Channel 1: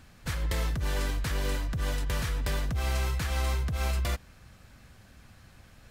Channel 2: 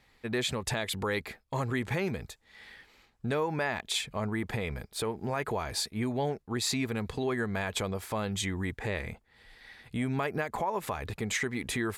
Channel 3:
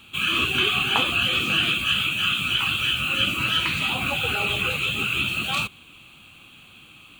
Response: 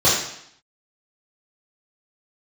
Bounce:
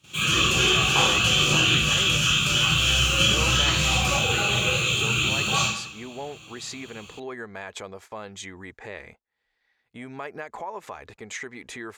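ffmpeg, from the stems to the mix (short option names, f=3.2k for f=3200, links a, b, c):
-filter_complex "[0:a]highpass=150,bass=f=250:g=11,treble=f=4k:g=5,volume=-8.5dB,asplit=2[a][b];[b]volume=-17dB[c];[1:a]bass=f=250:g=-11,treble=f=4k:g=-14,volume=-3dB,asplit=2[d][e];[2:a]volume=-4.5dB,asplit=2[f][g];[g]volume=-16dB[h];[e]apad=whole_len=317363[i];[f][i]sidechaincompress=threshold=-46dB:ratio=8:attack=16:release=1240[j];[3:a]atrim=start_sample=2205[k];[c][h]amix=inputs=2:normalize=0[l];[l][k]afir=irnorm=-1:irlink=0[m];[a][d][j][m]amix=inputs=4:normalize=0,agate=range=-16dB:threshold=-48dB:ratio=16:detection=peak,equalizer=f=6.6k:t=o:w=0.9:g=13"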